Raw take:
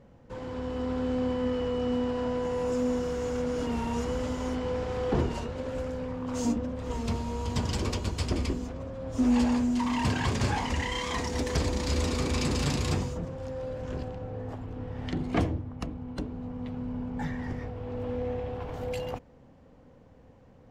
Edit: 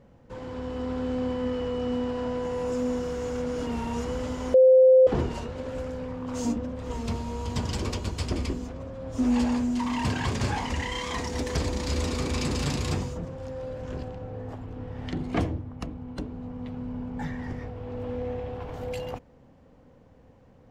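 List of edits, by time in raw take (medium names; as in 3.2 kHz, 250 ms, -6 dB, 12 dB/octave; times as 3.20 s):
4.54–5.07 s: bleep 518 Hz -12 dBFS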